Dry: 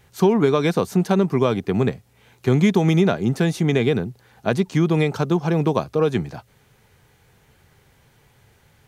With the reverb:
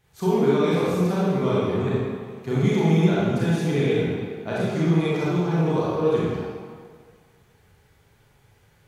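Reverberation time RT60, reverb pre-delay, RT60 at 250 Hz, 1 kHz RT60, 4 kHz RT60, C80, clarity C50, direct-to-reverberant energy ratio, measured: 1.8 s, 28 ms, 1.6 s, 1.9 s, 1.3 s, −1.5 dB, −4.5 dB, −8.5 dB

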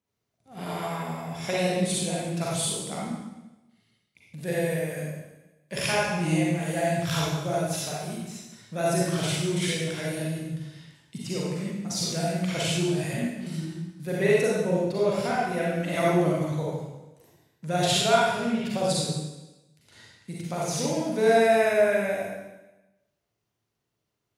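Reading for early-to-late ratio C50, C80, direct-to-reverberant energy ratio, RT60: −3.0 dB, 1.0 dB, −6.0 dB, 1.0 s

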